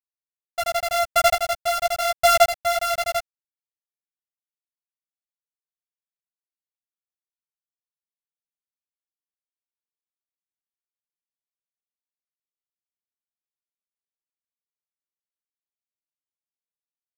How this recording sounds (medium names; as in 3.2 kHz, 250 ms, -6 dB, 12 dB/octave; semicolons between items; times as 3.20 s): a buzz of ramps at a fixed pitch in blocks of 64 samples; chopped level 0.9 Hz, depth 60%, duty 20%; a quantiser's noise floor 8-bit, dither none; a shimmering, thickened sound